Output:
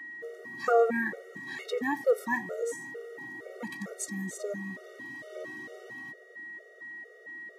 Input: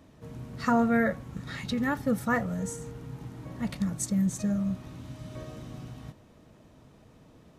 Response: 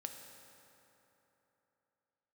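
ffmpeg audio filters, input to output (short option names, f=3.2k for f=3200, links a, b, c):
-af "aeval=exprs='val(0)+0.0112*sin(2*PI*1900*n/s)':c=same,highpass=f=410:t=q:w=3.8,afftfilt=real='re*gt(sin(2*PI*2.2*pts/sr)*(1-2*mod(floor(b*sr/1024/380),2)),0)':imag='im*gt(sin(2*PI*2.2*pts/sr)*(1-2*mod(floor(b*sr/1024/380),2)),0)':win_size=1024:overlap=0.75"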